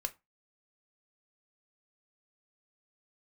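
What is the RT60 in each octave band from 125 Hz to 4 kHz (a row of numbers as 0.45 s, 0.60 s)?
0.30 s, 0.25 s, 0.20 s, 0.25 s, 0.20 s, 0.15 s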